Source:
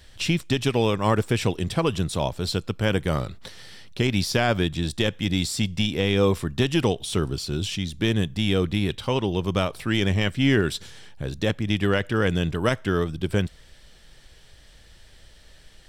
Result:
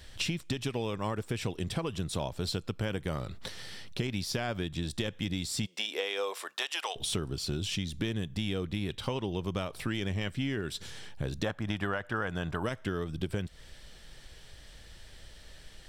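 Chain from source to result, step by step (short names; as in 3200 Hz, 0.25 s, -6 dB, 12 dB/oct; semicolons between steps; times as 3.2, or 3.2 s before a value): 5.65–6.95 HPF 360 Hz -> 790 Hz 24 dB/oct; 11.44–12.63 band shelf 1000 Hz +10 dB; compressor 12:1, threshold -29 dBFS, peak gain reduction 17 dB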